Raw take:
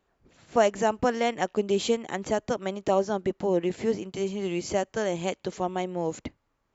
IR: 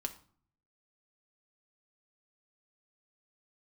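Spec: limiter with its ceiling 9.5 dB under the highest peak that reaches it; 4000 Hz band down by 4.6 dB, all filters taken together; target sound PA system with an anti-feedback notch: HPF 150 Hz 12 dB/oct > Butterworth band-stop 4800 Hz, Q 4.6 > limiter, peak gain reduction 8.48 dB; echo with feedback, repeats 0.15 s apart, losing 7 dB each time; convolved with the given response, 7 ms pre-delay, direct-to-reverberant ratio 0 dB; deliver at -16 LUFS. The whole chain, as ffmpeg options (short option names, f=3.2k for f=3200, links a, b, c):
-filter_complex "[0:a]equalizer=f=4k:t=o:g=-6,alimiter=limit=-19dB:level=0:latency=1,aecho=1:1:150|300|450|600|750:0.447|0.201|0.0905|0.0407|0.0183,asplit=2[a][b];[1:a]atrim=start_sample=2205,adelay=7[c];[b][c]afir=irnorm=-1:irlink=0,volume=0.5dB[d];[a][d]amix=inputs=2:normalize=0,highpass=150,asuperstop=centerf=4800:order=8:qfactor=4.6,volume=14.5dB,alimiter=limit=-7dB:level=0:latency=1"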